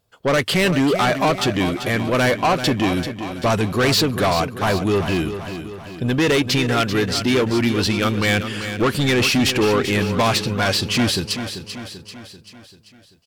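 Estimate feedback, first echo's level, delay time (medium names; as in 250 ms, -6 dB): 53%, -10.0 dB, 389 ms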